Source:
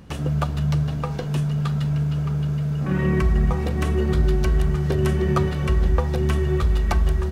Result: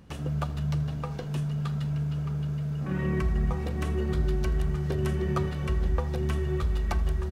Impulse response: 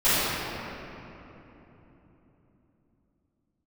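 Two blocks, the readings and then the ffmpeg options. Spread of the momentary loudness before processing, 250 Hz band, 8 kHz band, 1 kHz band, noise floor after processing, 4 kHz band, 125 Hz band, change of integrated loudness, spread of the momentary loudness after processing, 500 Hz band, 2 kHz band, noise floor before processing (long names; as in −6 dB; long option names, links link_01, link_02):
4 LU, −7.0 dB, −7.5 dB, −7.5 dB, −34 dBFS, −7.5 dB, −7.0 dB, −7.0 dB, 3 LU, −7.5 dB, −7.5 dB, −27 dBFS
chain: -af "aecho=1:1:81:0.0841,volume=-7.5dB"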